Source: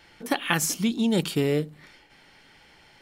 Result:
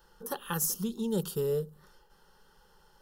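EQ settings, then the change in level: graphic EQ 125/250/500/1000/2000/4000/8000 Hz -10/-12/-4/-6/-10/-11/-10 dB; dynamic EQ 1100 Hz, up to -4 dB, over -50 dBFS, Q 0.79; fixed phaser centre 450 Hz, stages 8; +6.5 dB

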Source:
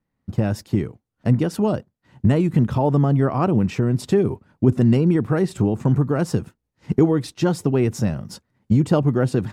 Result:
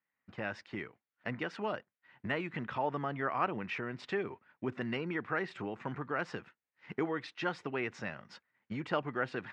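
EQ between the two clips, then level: band-pass 2000 Hz, Q 1.7; air absorption 130 m; +2.0 dB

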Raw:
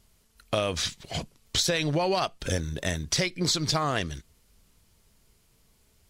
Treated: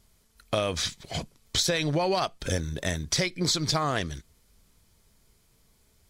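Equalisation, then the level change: notch 2800 Hz, Q 13; 0.0 dB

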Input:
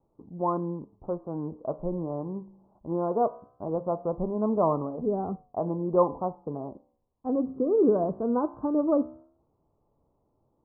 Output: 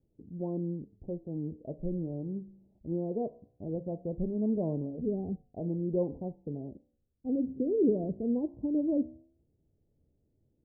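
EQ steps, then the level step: Gaussian blur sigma 19 samples; bell 76 Hz +3.5 dB; 0.0 dB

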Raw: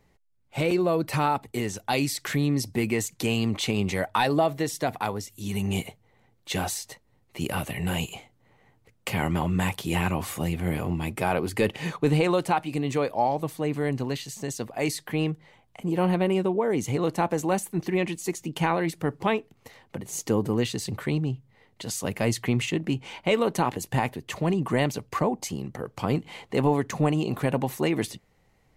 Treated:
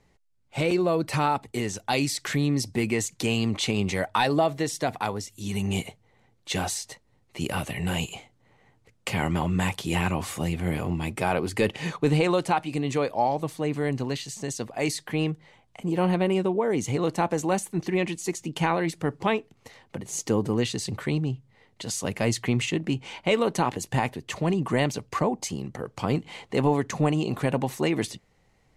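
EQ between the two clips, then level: LPF 8400 Hz 12 dB/oct; high shelf 5600 Hz +5.5 dB; 0.0 dB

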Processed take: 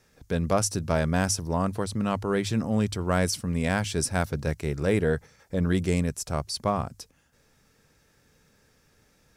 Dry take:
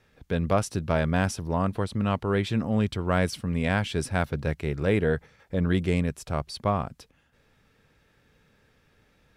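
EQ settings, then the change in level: resonant high shelf 4400 Hz +8 dB, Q 1.5; notches 50/100 Hz; 0.0 dB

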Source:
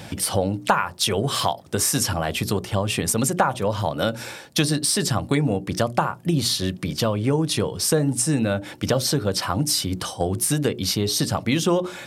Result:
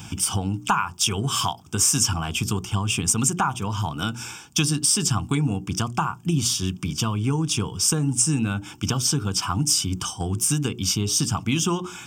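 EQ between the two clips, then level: bell 60 Hz +2.5 dB 2 oct; high shelf 5300 Hz +9 dB; fixed phaser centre 2800 Hz, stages 8; 0.0 dB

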